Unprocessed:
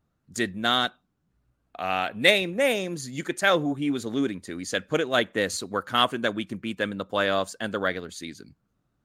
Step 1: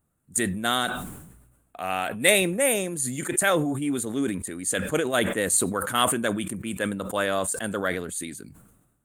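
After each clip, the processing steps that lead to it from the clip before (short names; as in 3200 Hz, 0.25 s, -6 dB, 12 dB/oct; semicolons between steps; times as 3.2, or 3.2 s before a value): resonant high shelf 6800 Hz +10.5 dB, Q 3; sustainer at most 52 dB/s; gain -1 dB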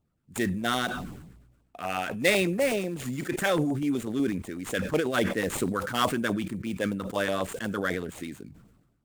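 median filter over 9 samples; LFO notch saw down 8.1 Hz 450–1900 Hz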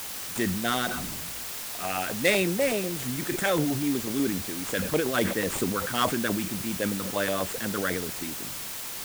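requantised 6-bit, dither triangular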